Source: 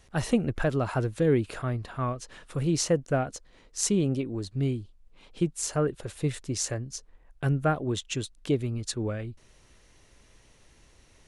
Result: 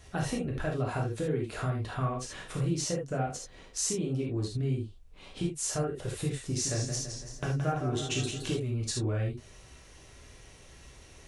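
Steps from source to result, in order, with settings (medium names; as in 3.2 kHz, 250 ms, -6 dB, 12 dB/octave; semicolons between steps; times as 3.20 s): compression 6:1, threshold -35 dBFS, peak gain reduction 16 dB; gated-style reverb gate 100 ms flat, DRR -2 dB; 6.45–8.60 s: modulated delay 167 ms, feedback 55%, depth 117 cents, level -7.5 dB; trim +2 dB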